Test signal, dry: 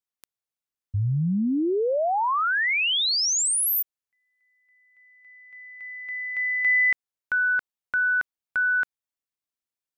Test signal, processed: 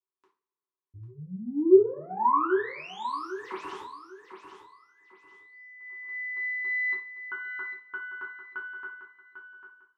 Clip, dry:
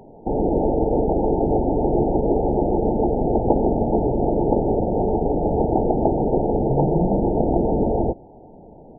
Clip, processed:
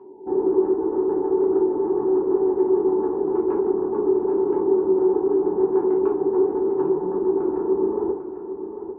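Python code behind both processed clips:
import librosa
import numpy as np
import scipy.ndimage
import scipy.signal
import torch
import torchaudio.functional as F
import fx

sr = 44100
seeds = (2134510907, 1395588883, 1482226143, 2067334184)

p1 = fx.tracing_dist(x, sr, depth_ms=0.096)
p2 = 10.0 ** (-10.5 / 20.0) * np.tanh(p1 / 10.0 ** (-10.5 / 20.0))
p3 = fx.rider(p2, sr, range_db=4, speed_s=0.5)
p4 = fx.double_bandpass(p3, sr, hz=630.0, octaves=1.4)
p5 = fx.air_absorb(p4, sr, metres=50.0)
p6 = p5 + fx.echo_feedback(p5, sr, ms=797, feedback_pct=27, wet_db=-9.5, dry=0)
y = fx.rev_double_slope(p6, sr, seeds[0], early_s=0.34, late_s=2.0, knee_db=-27, drr_db=-5.0)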